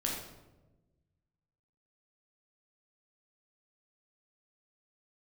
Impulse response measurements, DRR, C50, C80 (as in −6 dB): −2.5 dB, 1.5 dB, 4.5 dB